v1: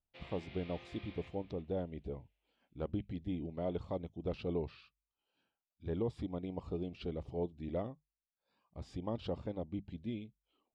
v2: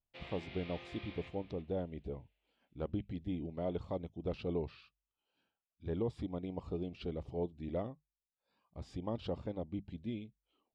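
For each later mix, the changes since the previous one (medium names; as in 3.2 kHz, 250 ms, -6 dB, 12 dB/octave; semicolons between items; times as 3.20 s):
background +3.5 dB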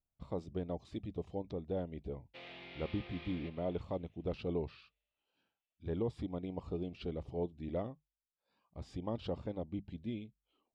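background: entry +2.20 s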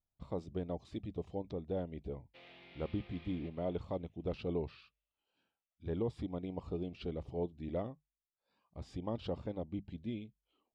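background -6.5 dB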